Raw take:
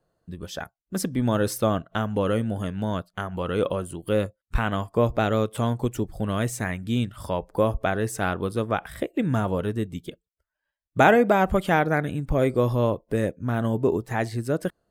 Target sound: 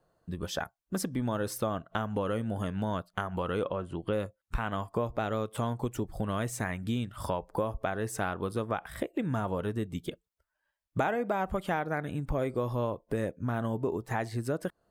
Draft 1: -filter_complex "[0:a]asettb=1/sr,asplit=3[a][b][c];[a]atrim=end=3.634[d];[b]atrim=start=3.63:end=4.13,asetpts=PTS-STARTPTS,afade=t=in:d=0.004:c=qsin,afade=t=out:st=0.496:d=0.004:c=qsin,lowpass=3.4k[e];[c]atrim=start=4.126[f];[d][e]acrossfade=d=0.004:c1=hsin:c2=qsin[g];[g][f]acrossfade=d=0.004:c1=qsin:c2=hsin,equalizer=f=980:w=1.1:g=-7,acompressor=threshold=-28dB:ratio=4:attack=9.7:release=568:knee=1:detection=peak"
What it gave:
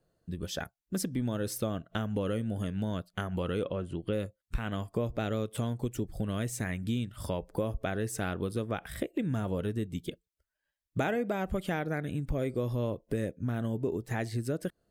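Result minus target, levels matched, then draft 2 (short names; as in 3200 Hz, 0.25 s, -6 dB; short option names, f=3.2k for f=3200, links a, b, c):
1000 Hz band -5.5 dB
-filter_complex "[0:a]asettb=1/sr,asplit=3[a][b][c];[a]atrim=end=3.634[d];[b]atrim=start=3.63:end=4.13,asetpts=PTS-STARTPTS,afade=t=in:d=0.004:c=qsin,afade=t=out:st=0.496:d=0.004:c=qsin,lowpass=3.4k[e];[c]atrim=start=4.126[f];[d][e]acrossfade=d=0.004:c1=hsin:c2=qsin[g];[g][f]acrossfade=d=0.004:c1=qsin:c2=hsin,equalizer=f=980:w=1.1:g=4.5,acompressor=threshold=-28dB:ratio=4:attack=9.7:release=568:knee=1:detection=peak"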